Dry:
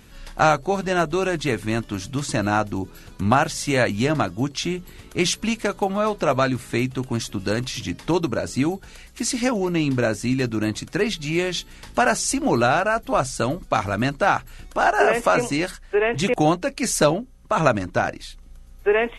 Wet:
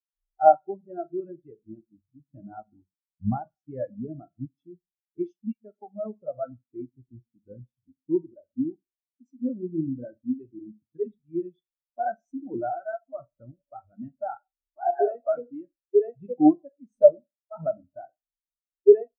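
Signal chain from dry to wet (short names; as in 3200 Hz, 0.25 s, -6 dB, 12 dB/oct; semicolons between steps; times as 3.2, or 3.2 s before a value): Schroeder reverb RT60 0.69 s, combs from 33 ms, DRR 6 dB; harmoniser -12 st -12 dB; spectral expander 4:1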